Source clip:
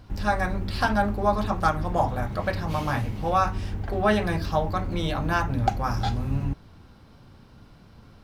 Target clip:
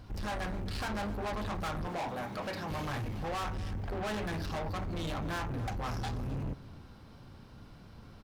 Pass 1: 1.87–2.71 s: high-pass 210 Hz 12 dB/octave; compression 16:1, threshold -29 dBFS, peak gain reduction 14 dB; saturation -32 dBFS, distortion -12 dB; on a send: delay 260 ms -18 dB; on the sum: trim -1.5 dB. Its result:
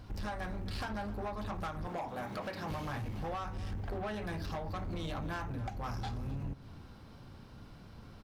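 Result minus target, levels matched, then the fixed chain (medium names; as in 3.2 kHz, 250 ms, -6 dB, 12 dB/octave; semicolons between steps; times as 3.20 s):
compression: peak gain reduction +14 dB
1.87–2.71 s: high-pass 210 Hz 12 dB/octave; saturation -32 dBFS, distortion -5 dB; on a send: delay 260 ms -18 dB; on the sum: trim -1.5 dB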